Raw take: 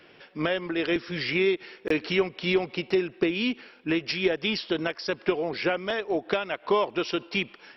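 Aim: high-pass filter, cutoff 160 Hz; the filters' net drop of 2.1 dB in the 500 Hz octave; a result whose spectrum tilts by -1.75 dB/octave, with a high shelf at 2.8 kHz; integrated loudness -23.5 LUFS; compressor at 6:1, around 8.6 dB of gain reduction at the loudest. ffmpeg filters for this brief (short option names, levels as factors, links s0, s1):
-af "highpass=160,equalizer=f=500:t=o:g=-3,highshelf=f=2800:g=5.5,acompressor=threshold=0.0355:ratio=6,volume=2.99"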